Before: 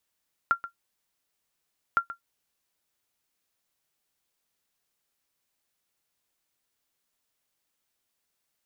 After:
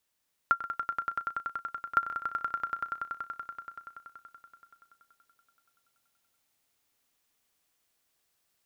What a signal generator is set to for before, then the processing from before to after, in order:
ping with an echo 1,380 Hz, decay 0.11 s, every 1.46 s, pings 2, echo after 0.13 s, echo −14.5 dB −13 dBFS
echo that builds up and dies away 95 ms, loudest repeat 5, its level −8 dB

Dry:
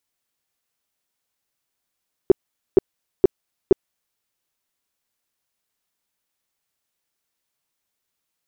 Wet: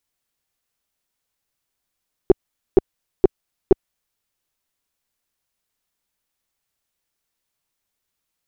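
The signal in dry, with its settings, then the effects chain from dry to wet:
tone bursts 381 Hz, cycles 6, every 0.47 s, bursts 4, −6 dBFS
stylus tracing distortion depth 0.062 ms
low-shelf EQ 74 Hz +9.5 dB

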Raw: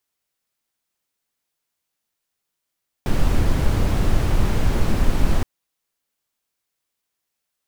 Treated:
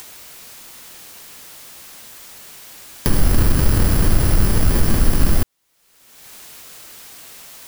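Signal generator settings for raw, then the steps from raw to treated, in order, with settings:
noise brown, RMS −16 dBFS 2.37 s
samples in bit-reversed order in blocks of 32 samples
in parallel at +0.5 dB: brickwall limiter −15 dBFS
on the sum: upward compression, threshold −13 dBFS

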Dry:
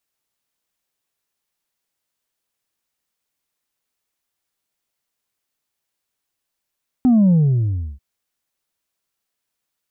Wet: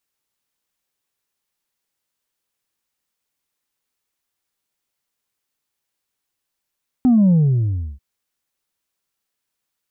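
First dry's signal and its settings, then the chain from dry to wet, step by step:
bass drop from 260 Hz, over 0.94 s, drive 2 dB, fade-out 0.69 s, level −10.5 dB
notch filter 660 Hz, Q 12

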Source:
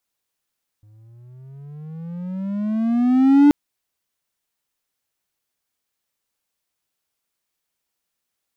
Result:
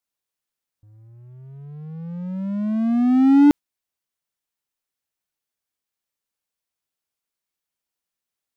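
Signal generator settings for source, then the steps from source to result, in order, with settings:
pitch glide with a swell triangle, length 2.68 s, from 104 Hz, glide +18 semitones, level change +39.5 dB, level −5.5 dB
noise reduction from a noise print of the clip's start 7 dB

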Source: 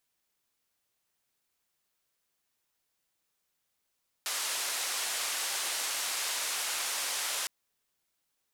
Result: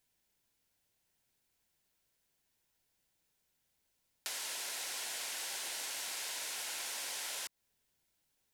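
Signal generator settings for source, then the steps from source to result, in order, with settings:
band-limited noise 640–10,000 Hz, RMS −33.5 dBFS 3.21 s
low-shelf EQ 220 Hz +8.5 dB
notch filter 1,200 Hz, Q 5.7
downward compressor 4 to 1, threshold −39 dBFS

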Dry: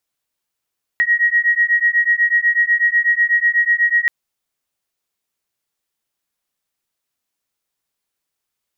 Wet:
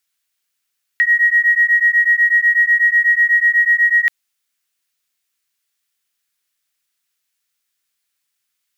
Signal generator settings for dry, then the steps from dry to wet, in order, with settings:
two tones that beat 1,890 Hz, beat 8.1 Hz, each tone −15.5 dBFS 3.08 s
high-pass filter 1,400 Hz 24 dB per octave
in parallel at −1 dB: brickwall limiter −20.5 dBFS
on the sum: log-companded quantiser 8 bits

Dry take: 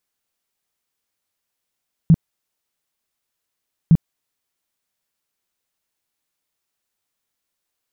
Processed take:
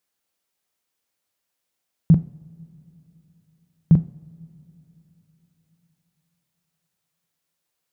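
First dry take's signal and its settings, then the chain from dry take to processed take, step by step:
tone bursts 163 Hz, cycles 7, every 1.81 s, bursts 2, −6.5 dBFS
high-pass filter 51 Hz
parametric band 550 Hz +2 dB 0.77 octaves
coupled-rooms reverb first 0.46 s, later 3.9 s, from −19 dB, DRR 12 dB

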